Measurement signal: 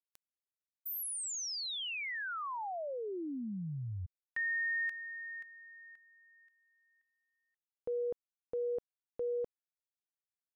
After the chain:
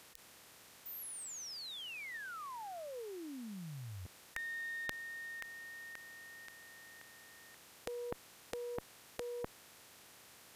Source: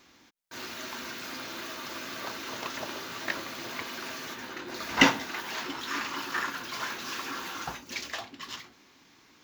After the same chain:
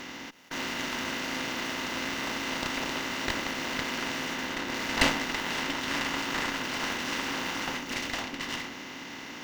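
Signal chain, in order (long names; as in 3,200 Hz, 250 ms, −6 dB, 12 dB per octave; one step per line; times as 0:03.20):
compressor on every frequency bin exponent 0.4
harmonic generator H 4 −7 dB, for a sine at −2.5 dBFS
level −8.5 dB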